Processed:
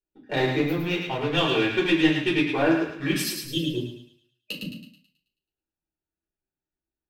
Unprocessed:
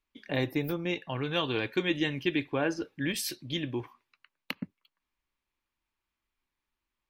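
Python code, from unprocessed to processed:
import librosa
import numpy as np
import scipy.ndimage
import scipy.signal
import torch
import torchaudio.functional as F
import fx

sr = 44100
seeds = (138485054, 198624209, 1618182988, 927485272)

y = fx.wiener(x, sr, points=41)
y = fx.highpass(y, sr, hz=240.0, slope=6)
y = fx.leveller(y, sr, passes=1)
y = fx.spec_box(y, sr, start_s=3.38, length_s=2.05, low_hz=620.0, high_hz=2500.0, gain_db=-20)
y = fx.echo_thinned(y, sr, ms=108, feedback_pct=46, hz=900.0, wet_db=-4.5)
y = fx.room_shoebox(y, sr, seeds[0], volume_m3=200.0, walls='furnished', distance_m=4.5)
y = F.gain(torch.from_numpy(y), -3.5).numpy()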